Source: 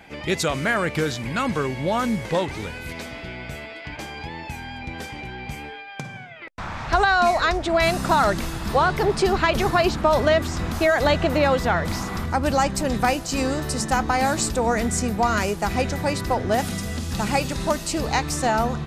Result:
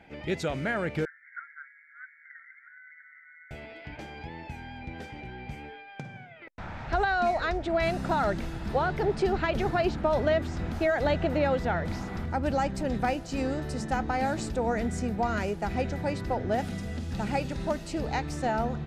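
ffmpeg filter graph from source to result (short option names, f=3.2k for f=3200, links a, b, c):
-filter_complex "[0:a]asettb=1/sr,asplit=3[a][b][c];[a]atrim=end=1.054[d];[b]atrim=start=1.05:end=3.51,asetpts=PTS-STARTPTS,afade=t=in:d=0.004:c=qsin,afade=t=out:st=2.456:d=0.004:c=qsin,asuperpass=centerf=1700:order=20:qfactor=2.1,tremolo=f=150:d=0.333[e];[c]atrim=start=3.506[f];[d][e]acrossfade=d=0.004:c1=hsin:c2=qsin[g];[g][f]acrossfade=d=0.004:c1=qsin:c2=hsin,lowpass=f=1.9k:p=1,equalizer=f=1.1k:t=o:w=0.29:g=-9.5,volume=-5.5dB"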